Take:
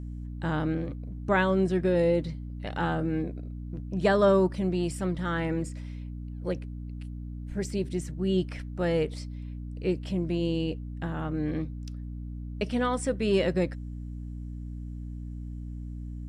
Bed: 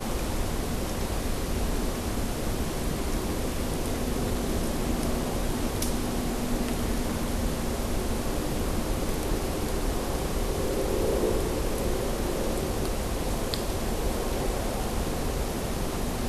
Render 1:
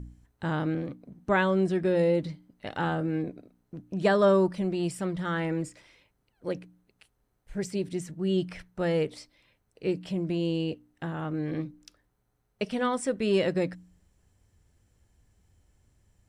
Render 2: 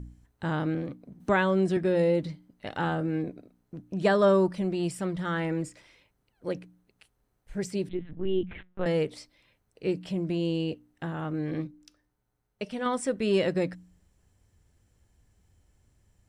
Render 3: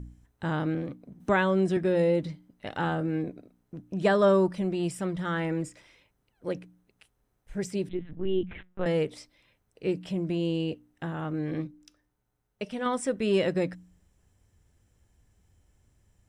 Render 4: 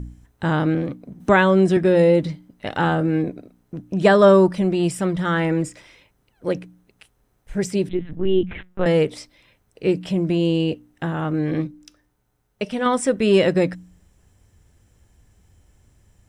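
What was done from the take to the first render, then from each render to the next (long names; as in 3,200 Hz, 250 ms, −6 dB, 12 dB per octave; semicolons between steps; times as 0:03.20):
hum removal 60 Hz, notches 5
0:01.20–0:01.77: multiband upward and downward compressor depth 40%; 0:07.89–0:08.86: linear-prediction vocoder at 8 kHz pitch kept; 0:11.67–0:12.86: tuned comb filter 300 Hz, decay 0.39 s, mix 40%
notch filter 4,400 Hz, Q 13
level +9 dB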